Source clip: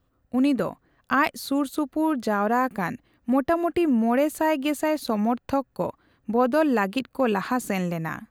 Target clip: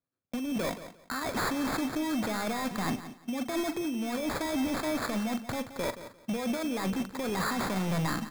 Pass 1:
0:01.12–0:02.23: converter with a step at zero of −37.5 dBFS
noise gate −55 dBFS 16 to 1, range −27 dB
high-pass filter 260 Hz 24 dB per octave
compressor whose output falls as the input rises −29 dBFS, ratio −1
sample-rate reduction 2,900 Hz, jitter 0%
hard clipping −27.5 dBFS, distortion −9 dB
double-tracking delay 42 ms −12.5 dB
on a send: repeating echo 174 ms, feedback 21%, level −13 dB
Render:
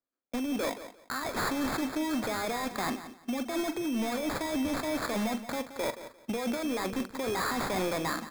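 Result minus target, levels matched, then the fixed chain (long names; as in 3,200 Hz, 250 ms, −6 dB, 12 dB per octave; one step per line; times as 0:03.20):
125 Hz band −6.0 dB
0:01.12–0:02.23: converter with a step at zero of −37.5 dBFS
noise gate −55 dBFS 16 to 1, range −27 dB
high-pass filter 110 Hz 24 dB per octave
compressor whose output falls as the input rises −29 dBFS, ratio −1
sample-rate reduction 2,900 Hz, jitter 0%
hard clipping −27.5 dBFS, distortion −9 dB
double-tracking delay 42 ms −12.5 dB
on a send: repeating echo 174 ms, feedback 21%, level −13 dB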